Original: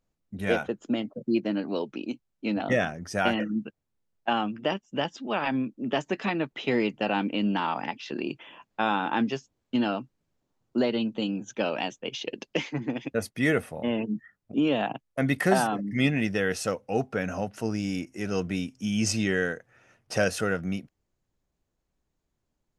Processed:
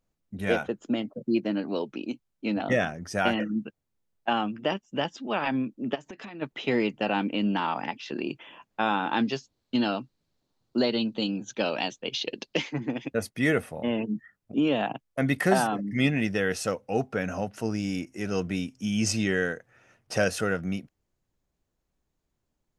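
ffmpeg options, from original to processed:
ffmpeg -i in.wav -filter_complex "[0:a]asplit=3[link_01][link_02][link_03];[link_01]afade=type=out:start_time=5.94:duration=0.02[link_04];[link_02]acompressor=threshold=-37dB:ratio=16:attack=3.2:release=140:knee=1:detection=peak,afade=type=in:start_time=5.94:duration=0.02,afade=type=out:start_time=6.41:duration=0.02[link_05];[link_03]afade=type=in:start_time=6.41:duration=0.02[link_06];[link_04][link_05][link_06]amix=inputs=3:normalize=0,asettb=1/sr,asplit=3[link_07][link_08][link_09];[link_07]atrim=end=9.094[link_10];[link_08]atrim=start=9.09:end=12.62,asetpts=PTS-STARTPTS,afade=type=in:duration=0.004:curve=qsin,afade=type=out:start_time=3.526:duration=0.004:curve=qsin,equalizer=frequency=4200:width=2.5:gain=10.5[link_11];[link_09]atrim=start=12.616[link_12];[link_10][link_11]acrossfade=duration=0.004:curve1=hsin:curve2=qsin[link_13];[link_13][link_12]acrossfade=duration=0.004:curve1=qsin:curve2=hsin" out.wav

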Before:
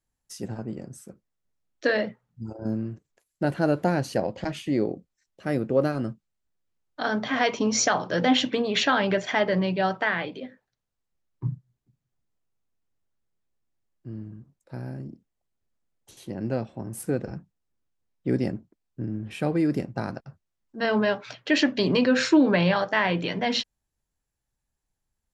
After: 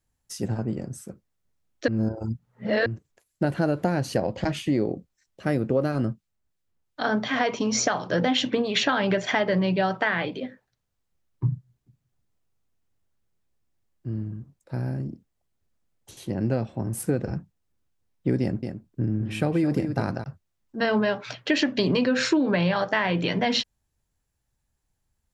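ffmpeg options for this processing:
ffmpeg -i in.wav -filter_complex "[0:a]asettb=1/sr,asplit=3[link_01][link_02][link_03];[link_01]atrim=end=6.054[link_04];[link_02]atrim=start=6.05:end=8.89,asetpts=PTS-STARTPTS,afade=type=in:duration=0.004:curve=qsin,afade=type=out:start_time=2.836:duration=0.004:curve=qsin,acrossover=split=1800[link_05][link_06];[link_05]aeval=exprs='val(0)*(1-0.5/2+0.5/2*cos(2*PI*2.8*n/s))':channel_layout=same[link_07];[link_06]aeval=exprs='val(0)*(1-0.5/2-0.5/2*cos(2*PI*2.8*n/s))':channel_layout=same[link_08];[link_07][link_08]amix=inputs=2:normalize=0[link_09];[link_03]atrim=start=8.886[link_10];[link_04][link_09]acrossfade=duration=0.004:curve1=hsin:curve2=qsin[link_11];[link_11][link_10]acrossfade=duration=0.004:curve1=qsin:curve2=hsin,asettb=1/sr,asplit=3[link_12][link_13][link_14];[link_12]atrim=end=18.414[link_15];[link_13]atrim=start=18.41:end=20.24,asetpts=PTS-STARTPTS,afade=type=in:duration=0.004:curve=qsin,afade=type=out:start_time=1.826:duration=0.004:curve=qsin,aecho=1:1:216:0.299,atrim=end_sample=80703[link_16];[link_14]atrim=start=20.236[link_17];[link_15][link_16]acrossfade=duration=0.004:curve1=hsin:curve2=qsin[link_18];[link_18][link_17]acrossfade=duration=0.004:curve1=qsin:curve2=hsin,asplit=3[link_19][link_20][link_21];[link_19]atrim=end=1.882[link_22];[link_20]atrim=start=1.878:end=2.862,asetpts=PTS-STARTPTS,areverse[link_23];[link_21]atrim=start=2.858[link_24];[link_22][link_23]acrossfade=duration=0.004:curve1=hsin:curve2=hsin[link_25];[link_25][link_24]acrossfade=duration=0.004:curve1=hsin:curve2=hsin,equalizer=frequency=86:width=0.9:gain=5,acompressor=threshold=-23dB:ratio=6,volume=4dB" out.wav

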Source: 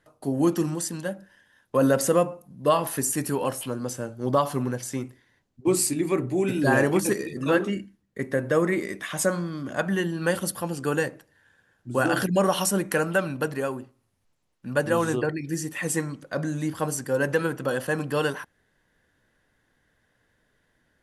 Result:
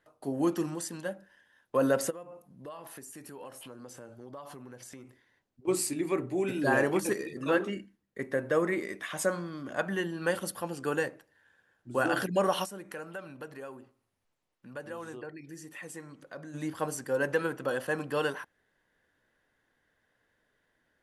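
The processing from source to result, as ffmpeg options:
ffmpeg -i in.wav -filter_complex "[0:a]asplit=3[link_01][link_02][link_03];[link_01]afade=type=out:start_time=2.09:duration=0.02[link_04];[link_02]acompressor=threshold=-36dB:ratio=8:attack=3.2:release=140:knee=1:detection=peak,afade=type=in:start_time=2.09:duration=0.02,afade=type=out:start_time=5.67:duration=0.02[link_05];[link_03]afade=type=in:start_time=5.67:duration=0.02[link_06];[link_04][link_05][link_06]amix=inputs=3:normalize=0,asplit=3[link_07][link_08][link_09];[link_07]afade=type=out:start_time=12.64:duration=0.02[link_10];[link_08]acompressor=threshold=-42dB:ratio=2:attack=3.2:release=140:knee=1:detection=peak,afade=type=in:start_time=12.64:duration=0.02,afade=type=out:start_time=16.53:duration=0.02[link_11];[link_09]afade=type=in:start_time=16.53:duration=0.02[link_12];[link_10][link_11][link_12]amix=inputs=3:normalize=0,bass=frequency=250:gain=-7,treble=frequency=4000:gain=-4,volume=-4dB" out.wav

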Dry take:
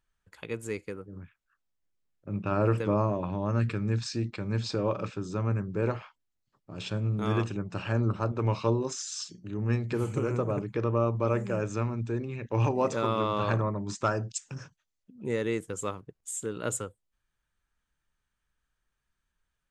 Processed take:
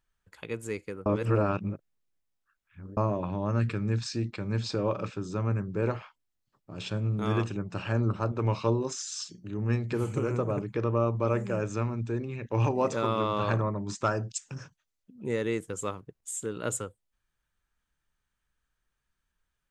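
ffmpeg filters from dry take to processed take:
ffmpeg -i in.wav -filter_complex "[0:a]asplit=3[link_01][link_02][link_03];[link_01]atrim=end=1.062[link_04];[link_02]atrim=start=1.058:end=2.972,asetpts=PTS-STARTPTS,areverse[link_05];[link_03]atrim=start=2.968[link_06];[link_04][link_05]acrossfade=duration=0.004:curve1=hsin:curve2=hsin[link_07];[link_07][link_06]acrossfade=duration=0.004:curve1=hsin:curve2=hsin" out.wav

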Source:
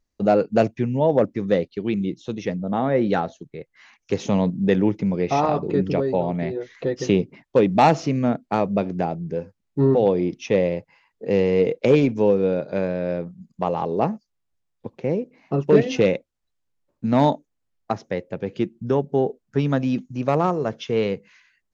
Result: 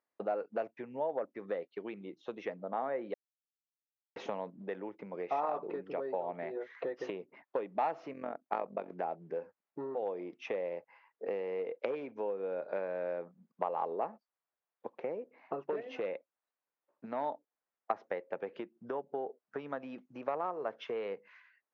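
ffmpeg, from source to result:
ffmpeg -i in.wav -filter_complex "[0:a]asettb=1/sr,asplit=3[link_01][link_02][link_03];[link_01]atrim=end=8.134[link_04];[link_02]atrim=start=8.13:end=8.92,asetpts=PTS-STARTPTS,afade=type=in:duration=0.004:curve=qsin,afade=type=out:start_time=0.786:duration=0.004:curve=qsin,tremolo=f=45:d=0.75[link_05];[link_03]atrim=start=8.916[link_06];[link_04][link_05]acrossfade=duration=0.004:curve1=hsin:curve2=qsin[link_07];[link_07][link_06]acrossfade=duration=0.004:curve1=qsin:curve2=hsin,asplit=3[link_08][link_09][link_10];[link_08]atrim=end=3.14,asetpts=PTS-STARTPTS,afade=type=out:start_time=3.136:duration=0.004:curve=hsin[link_11];[link_09]atrim=start=3.14:end=4.16,asetpts=PTS-STARTPTS,volume=0[link_12];[link_10]atrim=start=4.16,asetpts=PTS-STARTPTS,afade=type=in:duration=0.004:curve=hsin[link_13];[link_11][link_12][link_13]concat=n=3:v=0:a=1,lowpass=1600,acompressor=threshold=-27dB:ratio=10,highpass=620,volume=1dB" out.wav

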